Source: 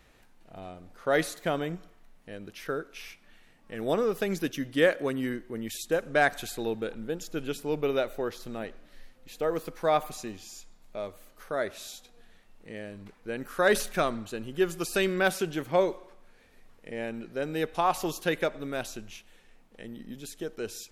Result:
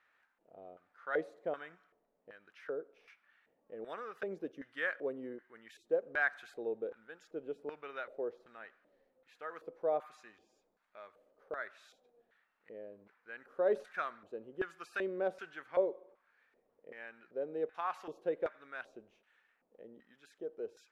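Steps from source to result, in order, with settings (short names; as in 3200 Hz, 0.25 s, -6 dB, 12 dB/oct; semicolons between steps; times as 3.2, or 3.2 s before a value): short-mantissa float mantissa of 6-bit; LFO band-pass square 1.3 Hz 500–1500 Hz; gain -4 dB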